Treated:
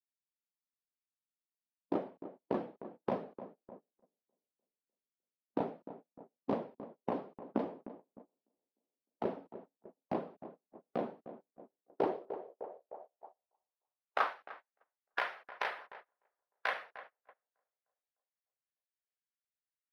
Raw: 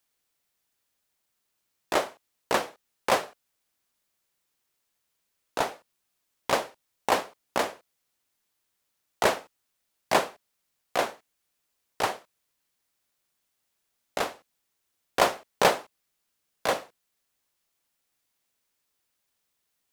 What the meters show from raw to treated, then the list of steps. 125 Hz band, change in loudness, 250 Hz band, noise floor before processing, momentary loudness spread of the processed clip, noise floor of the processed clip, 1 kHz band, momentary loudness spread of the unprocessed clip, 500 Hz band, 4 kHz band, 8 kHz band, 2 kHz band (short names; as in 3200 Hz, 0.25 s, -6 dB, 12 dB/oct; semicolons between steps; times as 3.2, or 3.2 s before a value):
-5.5 dB, -11.0 dB, -1.5 dB, -78 dBFS, 19 LU, under -85 dBFS, -12.0 dB, 13 LU, -9.5 dB, -19.0 dB, under -30 dB, -10.5 dB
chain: bin magnitudes rounded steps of 15 dB; bell 170 Hz +4.5 dB 0.29 oct; compressor 20:1, threshold -25 dBFS, peak gain reduction 11 dB; on a send: tape echo 0.302 s, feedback 63%, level -12 dB, low-pass 1300 Hz; on the sum: band-pass sweep 240 Hz -> 1700 Hz, 11.57–14.57; vocal rider within 4 dB 2 s; gate -59 dBFS, range -25 dB; bell 7300 Hz -14.5 dB 0.51 oct; gain +7.5 dB